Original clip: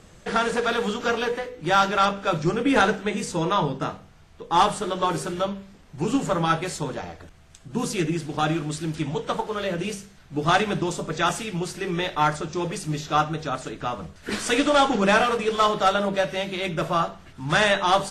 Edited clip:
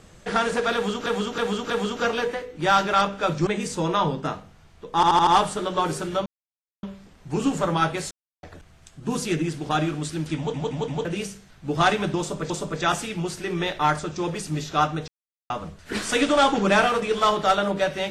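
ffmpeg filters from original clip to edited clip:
-filter_complex "[0:a]asplit=19[a][b][c][d][e][f][g][h][i][j][k][l][m][n][o][p][q][r][s];[a]atrim=end=1.062[t];[b]atrim=start=0.738:end=1.062[u];[c]atrim=start=0.738:end=1.062[v];[d]atrim=start=0.738:end=2.512[w];[e]atrim=start=3.038:end=4.602[x];[f]atrim=start=4.518:end=4.602[y];[g]atrim=start=4.518:end=4.602[z];[h]atrim=start=4.518:end=4.602[aa];[i]atrim=start=4.518:end=5.51,asetpts=PTS-STARTPTS,afade=t=out:st=0.988:d=0.004:c=hsin,apad=pad_dur=0.57[ab];[j]atrim=start=5.51:end=6.79,asetpts=PTS-STARTPTS,afade=t=in:d=0.004:c=hsin,afade=t=out:st=1.276:d=0.004:c=hsin[ac];[k]atrim=start=6.79:end=7.11,asetpts=PTS-STARTPTS,volume=0[ad];[l]atrim=start=7.11:end=9.222,asetpts=PTS-STARTPTS,afade=t=in:d=0.004:c=hsin[ae];[m]atrim=start=9.048:end=9.222[af];[n]atrim=start=9.048:end=9.222[ag];[o]atrim=start=9.048:end=9.222[ah];[p]atrim=start=9.728:end=11.182[ai];[q]atrim=start=10.868:end=13.45,asetpts=PTS-STARTPTS,afade=t=out:st=2.578:d=0.004:c=hsin[aj];[r]atrim=start=13.45:end=13.87,asetpts=PTS-STARTPTS,volume=0[ak];[s]atrim=start=13.87,asetpts=PTS-STARTPTS,afade=t=in:d=0.004:c=hsin[al];[t][u]acrossfade=d=0.004:c1=hsin:c2=hsin[am];[am][v]acrossfade=d=0.004:c1=hsin:c2=hsin[an];[an][w]acrossfade=d=0.004:c1=hsin:c2=hsin[ao];[ao][x]acrossfade=d=0.004:c1=hsin:c2=hsin[ap];[ap][y]acrossfade=d=0.004:c1=hsin:c2=hsin[aq];[aq][z]acrossfade=d=0.004:c1=hsin:c2=hsin[ar];[ar][aa]acrossfade=d=0.004:c1=hsin:c2=hsin[as];[ab][ac][ad][ae]concat=n=4:v=0:a=1[at];[as][at]acrossfade=d=0.004:c1=hsin:c2=hsin[au];[au][af]acrossfade=d=0.004:c1=hsin:c2=hsin[av];[av][ag]acrossfade=d=0.004:c1=hsin:c2=hsin[aw];[aw][ah]acrossfade=d=0.004:c1=hsin:c2=hsin[ax];[ax][ai]acrossfade=d=0.004:c1=hsin:c2=hsin[ay];[aj][ak][al]concat=n=3:v=0:a=1[az];[ay][az]acrossfade=d=0.004:c1=hsin:c2=hsin"

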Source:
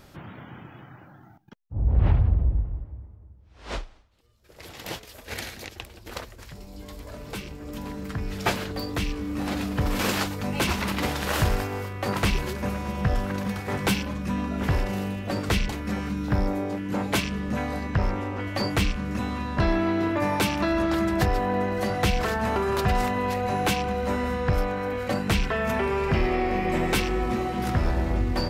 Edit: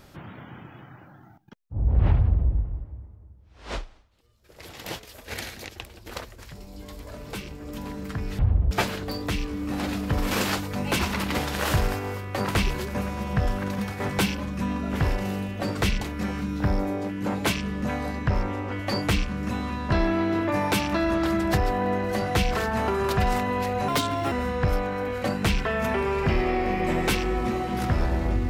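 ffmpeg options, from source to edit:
-filter_complex "[0:a]asplit=5[a][b][c][d][e];[a]atrim=end=8.392[f];[b]atrim=start=2.158:end=2.482[g];[c]atrim=start=8.388:end=23.564[h];[d]atrim=start=23.56:end=24.17,asetpts=PTS-STARTPTS,asetrate=61299,aresample=44100,atrim=end_sample=19353,asetpts=PTS-STARTPTS[i];[e]atrim=start=24.166[j];[f][g]acrossfade=d=0.004:c1=hsin:c2=hsin[k];[k][h]acrossfade=d=0.004:c1=hsin:c2=hsin[l];[l][i]acrossfade=d=0.004:c1=hsin:c2=hsin[m];[m][j]acrossfade=d=0.004:c1=hsin:c2=hsin"

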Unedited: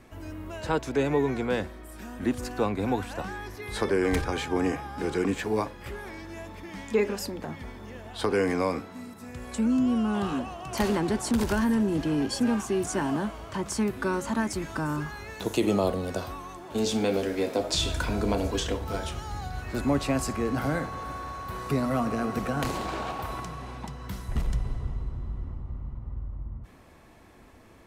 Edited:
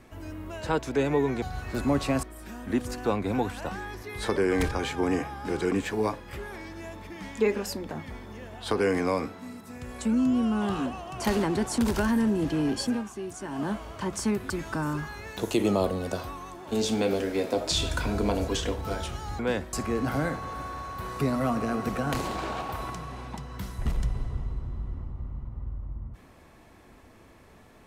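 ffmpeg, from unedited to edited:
-filter_complex "[0:a]asplit=8[a][b][c][d][e][f][g][h];[a]atrim=end=1.422[i];[b]atrim=start=19.418:end=20.232[j];[c]atrim=start=1.758:end=12.57,asetpts=PTS-STARTPTS,afade=t=out:st=10.592:d=0.22:silence=0.354813[k];[d]atrim=start=12.57:end=13.02,asetpts=PTS-STARTPTS,volume=-9dB[l];[e]atrim=start=13.02:end=14.032,asetpts=PTS-STARTPTS,afade=t=in:d=0.22:silence=0.354813[m];[f]atrim=start=14.528:end=19.422[n];[g]atrim=start=1.418:end=1.762[o];[h]atrim=start=20.228[p];[i][j]acrossfade=d=0.004:c1=hsin:c2=hsin[q];[k][l][m]concat=n=3:v=0:a=1[r];[q][r]acrossfade=d=0.004:c1=hsin:c2=hsin[s];[s][n]acrossfade=d=0.004:c1=hsin:c2=hsin[t];[t][o]acrossfade=d=0.004:c1=hsin:c2=hsin[u];[u][p]acrossfade=d=0.004:c1=hsin:c2=hsin"

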